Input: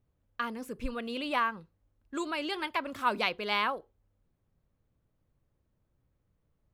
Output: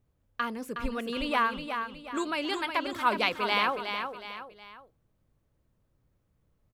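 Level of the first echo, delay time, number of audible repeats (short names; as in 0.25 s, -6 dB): -7.0 dB, 0.366 s, 3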